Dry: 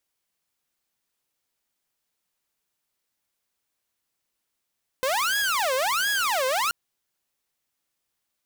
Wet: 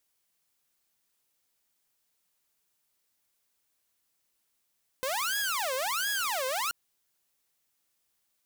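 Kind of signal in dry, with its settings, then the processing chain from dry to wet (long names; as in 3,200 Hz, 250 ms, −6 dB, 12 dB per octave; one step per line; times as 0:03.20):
siren wail 513–1,670 Hz 1.4 per second saw −19.5 dBFS 1.68 s
high-shelf EQ 5,300 Hz +5 dB
brickwall limiter −21 dBFS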